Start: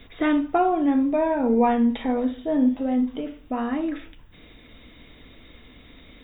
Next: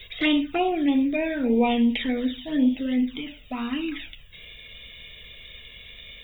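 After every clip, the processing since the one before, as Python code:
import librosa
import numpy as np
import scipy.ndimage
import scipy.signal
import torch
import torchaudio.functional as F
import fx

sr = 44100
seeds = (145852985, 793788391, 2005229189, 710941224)

y = fx.high_shelf_res(x, sr, hz=1800.0, db=12.5, q=1.5)
y = fx.env_flanger(y, sr, rest_ms=2.1, full_db=-16.5)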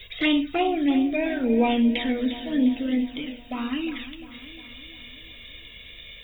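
y = fx.echo_feedback(x, sr, ms=353, feedback_pct=57, wet_db=-13.5)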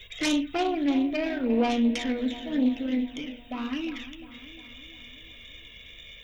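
y = fx.self_delay(x, sr, depth_ms=0.16)
y = y * 10.0 ** (-3.0 / 20.0)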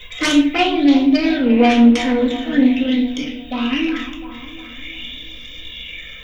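y = fx.room_shoebox(x, sr, seeds[0], volume_m3=550.0, walls='furnished', distance_m=2.0)
y = fx.bell_lfo(y, sr, hz=0.46, low_hz=990.0, high_hz=4900.0, db=10)
y = y * 10.0 ** (6.5 / 20.0)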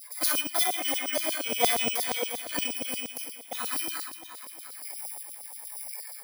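y = fx.bit_reversed(x, sr, seeds[1], block=16)
y = fx.spec_repair(y, sr, seeds[2], start_s=0.81, length_s=0.32, low_hz=1100.0, high_hz=2800.0, source='after')
y = fx.filter_lfo_highpass(y, sr, shape='saw_down', hz=8.5, low_hz=560.0, high_hz=5700.0, q=1.8)
y = y * 10.0 ** (-6.5 / 20.0)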